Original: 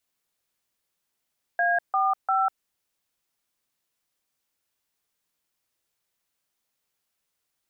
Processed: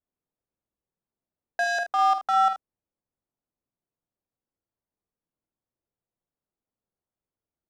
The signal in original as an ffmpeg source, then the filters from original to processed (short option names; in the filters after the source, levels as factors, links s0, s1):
-f lavfi -i "aevalsrc='0.075*clip(min(mod(t,0.348),0.197-mod(t,0.348))/0.002,0,1)*(eq(floor(t/0.348),0)*(sin(2*PI*697*mod(t,0.348))+sin(2*PI*1633*mod(t,0.348)))+eq(floor(t/0.348),1)*(sin(2*PI*770*mod(t,0.348))+sin(2*PI*1209*mod(t,0.348)))+eq(floor(t/0.348),2)*(sin(2*PI*770*mod(t,0.348))+sin(2*PI*1336*mod(t,0.348))))':d=1.044:s=44100"
-filter_complex "[0:a]adynamicsmooth=sensitivity=3:basefreq=710,asplit=2[s0][s1];[s1]aecho=0:1:48|78:0.376|0.282[s2];[s0][s2]amix=inputs=2:normalize=0"